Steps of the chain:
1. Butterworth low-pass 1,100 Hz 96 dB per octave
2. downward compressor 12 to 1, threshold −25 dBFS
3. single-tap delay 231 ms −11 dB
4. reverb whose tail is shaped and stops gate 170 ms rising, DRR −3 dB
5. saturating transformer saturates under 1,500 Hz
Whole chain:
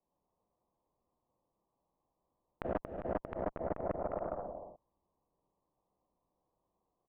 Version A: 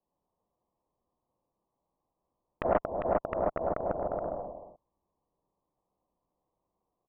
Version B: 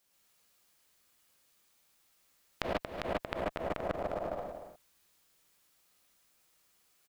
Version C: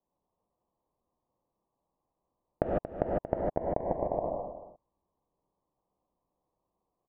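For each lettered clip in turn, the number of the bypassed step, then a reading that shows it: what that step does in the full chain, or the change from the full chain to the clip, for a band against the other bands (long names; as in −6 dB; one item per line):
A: 2, average gain reduction 4.0 dB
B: 1, 2 kHz band +9.5 dB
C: 5, change in crest factor +3.5 dB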